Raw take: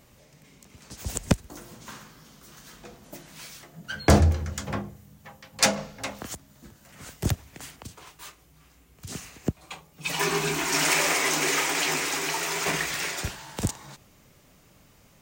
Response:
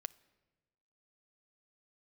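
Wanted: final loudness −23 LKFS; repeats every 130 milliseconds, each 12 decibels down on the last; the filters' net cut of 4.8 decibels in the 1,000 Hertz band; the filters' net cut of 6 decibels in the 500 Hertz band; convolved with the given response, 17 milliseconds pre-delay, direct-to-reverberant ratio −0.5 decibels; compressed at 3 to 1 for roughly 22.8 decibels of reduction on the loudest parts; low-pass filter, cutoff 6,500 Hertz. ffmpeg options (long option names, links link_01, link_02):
-filter_complex "[0:a]lowpass=6500,equalizer=frequency=500:width_type=o:gain=-7,equalizer=frequency=1000:width_type=o:gain=-4,acompressor=threshold=-47dB:ratio=3,aecho=1:1:130|260|390:0.251|0.0628|0.0157,asplit=2[link_01][link_02];[1:a]atrim=start_sample=2205,adelay=17[link_03];[link_02][link_03]afir=irnorm=-1:irlink=0,volume=4dB[link_04];[link_01][link_04]amix=inputs=2:normalize=0,volume=19.5dB"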